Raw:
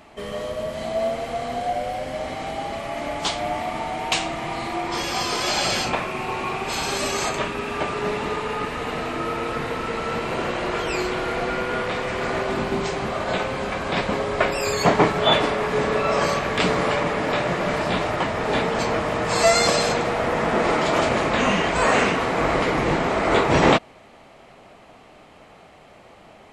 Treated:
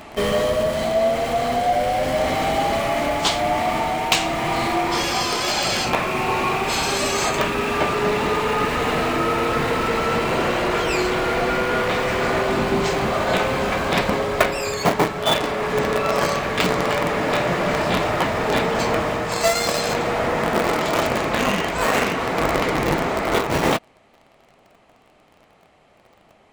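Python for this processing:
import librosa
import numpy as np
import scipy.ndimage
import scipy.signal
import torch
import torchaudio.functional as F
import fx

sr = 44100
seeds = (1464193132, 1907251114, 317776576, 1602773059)

p1 = fx.quant_companded(x, sr, bits=2)
p2 = x + (p1 * librosa.db_to_amplitude(-12.0))
y = fx.rider(p2, sr, range_db=10, speed_s=0.5)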